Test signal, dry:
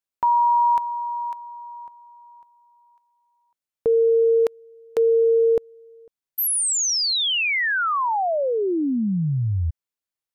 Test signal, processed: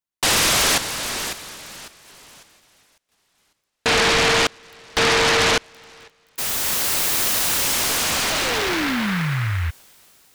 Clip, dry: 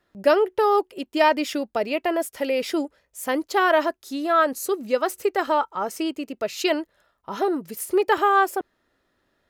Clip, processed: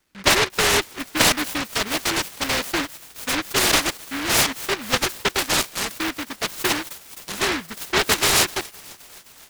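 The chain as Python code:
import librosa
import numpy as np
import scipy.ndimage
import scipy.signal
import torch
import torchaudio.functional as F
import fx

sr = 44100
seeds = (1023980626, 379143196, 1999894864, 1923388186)

p1 = x + fx.echo_wet_highpass(x, sr, ms=260, feedback_pct=72, hz=3500.0, wet_db=-4.5, dry=0)
y = fx.noise_mod_delay(p1, sr, seeds[0], noise_hz=1600.0, depth_ms=0.48)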